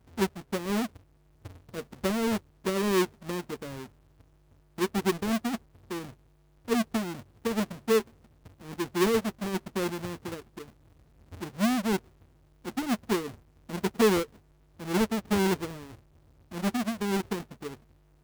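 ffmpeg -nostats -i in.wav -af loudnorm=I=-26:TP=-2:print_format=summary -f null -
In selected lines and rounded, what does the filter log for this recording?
Input Integrated:    -30.1 LUFS
Input True Peak:     -14.4 dBTP
Input LRA:             3.3 LU
Input Threshold:     -41.7 LUFS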